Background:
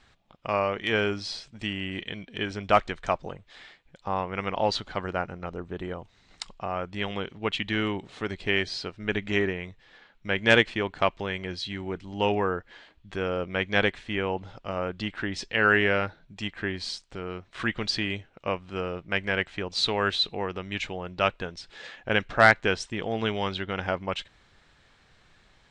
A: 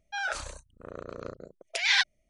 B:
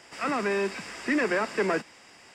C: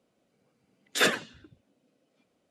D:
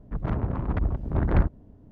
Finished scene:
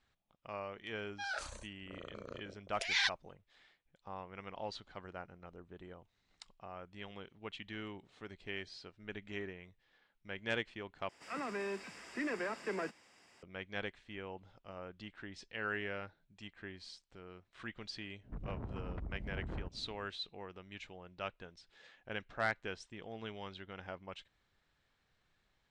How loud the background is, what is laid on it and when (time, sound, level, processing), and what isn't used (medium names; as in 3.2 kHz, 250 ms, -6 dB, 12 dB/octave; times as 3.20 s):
background -17.5 dB
1.06 s: add A -8.5 dB
11.09 s: replace with B -12.5 dB
18.21 s: add D -6 dB, fades 0.10 s + compression, threshold -33 dBFS
not used: C